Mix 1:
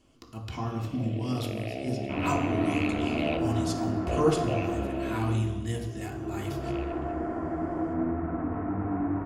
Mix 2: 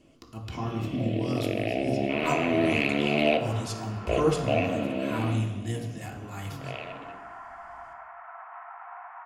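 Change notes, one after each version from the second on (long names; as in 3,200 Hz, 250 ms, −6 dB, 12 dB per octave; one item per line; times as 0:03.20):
first sound +7.5 dB
second sound: add Butterworth high-pass 790 Hz 48 dB per octave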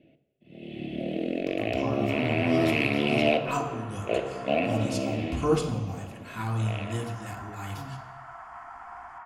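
speech: entry +1.25 s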